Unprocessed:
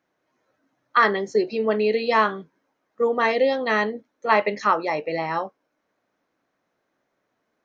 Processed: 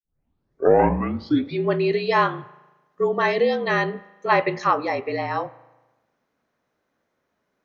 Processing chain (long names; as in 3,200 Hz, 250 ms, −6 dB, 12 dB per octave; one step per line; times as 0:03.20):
turntable start at the beginning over 1.68 s
spring reverb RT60 1.1 s, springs 37 ms, chirp 65 ms, DRR 18.5 dB
frequency shifter −43 Hz